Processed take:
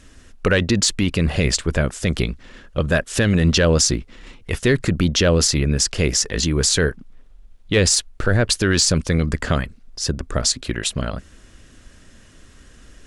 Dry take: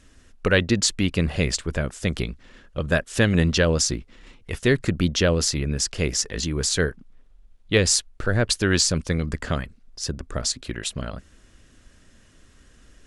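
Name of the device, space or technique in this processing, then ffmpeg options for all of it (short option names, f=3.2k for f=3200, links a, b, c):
soft clipper into limiter: -af "asoftclip=type=tanh:threshold=-5dB,alimiter=limit=-14dB:level=0:latency=1:release=25,volume=6.5dB"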